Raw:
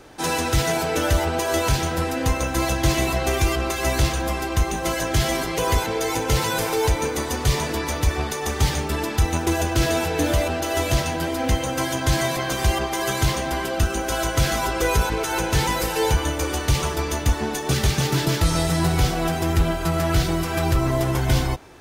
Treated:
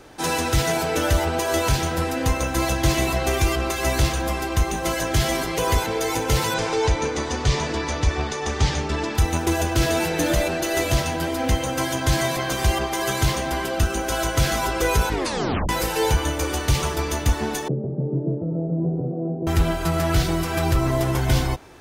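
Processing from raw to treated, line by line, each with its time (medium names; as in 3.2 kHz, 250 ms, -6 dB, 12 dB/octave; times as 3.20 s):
6.54–9.15 s: low-pass 7 kHz 24 dB/octave
9.99–10.85 s: comb 5.6 ms
15.11 s: tape stop 0.58 s
17.68–19.47 s: elliptic band-pass 140–560 Hz, stop band 70 dB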